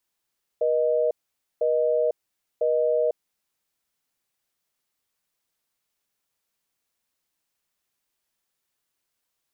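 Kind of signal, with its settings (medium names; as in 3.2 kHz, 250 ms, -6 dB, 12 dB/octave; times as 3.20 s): call progress tone busy tone, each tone -22 dBFS 2.71 s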